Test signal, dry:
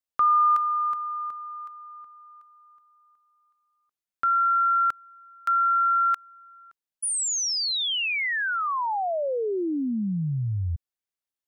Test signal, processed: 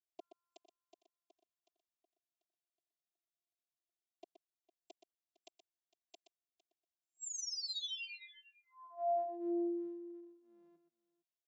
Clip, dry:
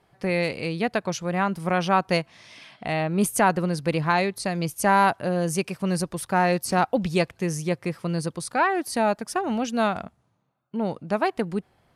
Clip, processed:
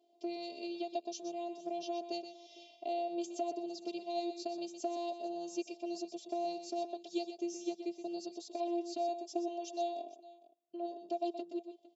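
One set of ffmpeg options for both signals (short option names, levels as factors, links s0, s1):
-filter_complex "[0:a]asuperstop=centerf=1400:order=8:qfactor=0.58,acrossover=split=420 2000:gain=0.112 1 0.251[s0][s1][s2];[s0][s1][s2]amix=inputs=3:normalize=0,acrossover=split=840|3400[s3][s4][s5];[s3]acompressor=threshold=0.0141:ratio=4[s6];[s4]acompressor=threshold=0.00178:ratio=4[s7];[s5]acompressor=threshold=0.00562:ratio=4[s8];[s6][s7][s8]amix=inputs=3:normalize=0,afftfilt=real='hypot(re,im)*cos(PI*b)':imag='0':win_size=512:overlap=0.75,asplit=2[s9][s10];[s10]aecho=0:1:123|456:0.335|0.106[s11];[s9][s11]amix=inputs=2:normalize=0,afftfilt=real='re*between(b*sr/4096,160,7600)':imag='im*between(b*sr/4096,160,7600)':win_size=4096:overlap=0.75,volume=1.78"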